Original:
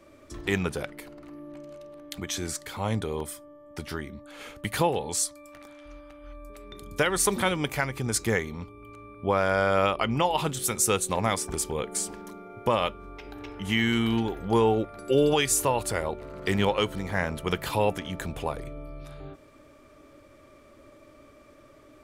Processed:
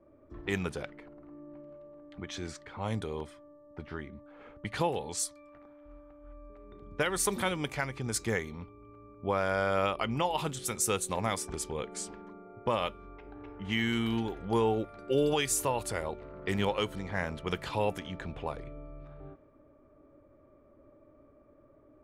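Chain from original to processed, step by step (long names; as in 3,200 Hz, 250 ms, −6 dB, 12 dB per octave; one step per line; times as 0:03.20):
low-pass that shuts in the quiet parts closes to 810 Hz, open at −23.5 dBFS
level −5.5 dB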